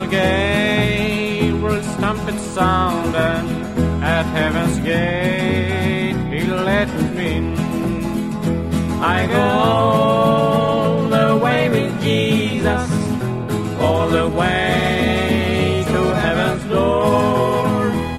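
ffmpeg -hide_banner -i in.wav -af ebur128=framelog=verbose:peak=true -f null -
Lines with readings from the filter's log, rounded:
Integrated loudness:
  I:         -17.4 LUFS
  Threshold: -27.4 LUFS
Loudness range:
  LRA:         3.4 LU
  Threshold: -37.5 LUFS
  LRA low:   -18.9 LUFS
  LRA high:  -15.6 LUFS
True peak:
  Peak:       -2.0 dBFS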